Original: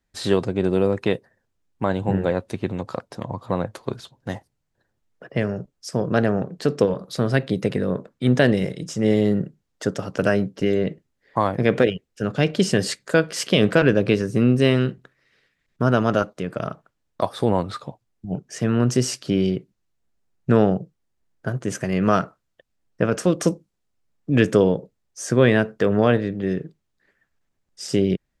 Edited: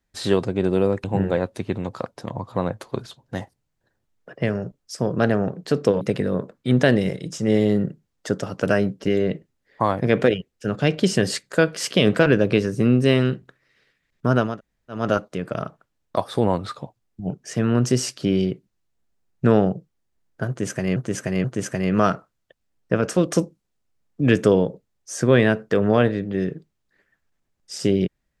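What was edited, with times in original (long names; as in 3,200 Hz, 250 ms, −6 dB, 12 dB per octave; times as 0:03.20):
0:01.04–0:01.98: remove
0:06.95–0:07.57: remove
0:16.05: splice in room tone 0.51 s, crossfade 0.24 s
0:21.53–0:22.01: repeat, 3 plays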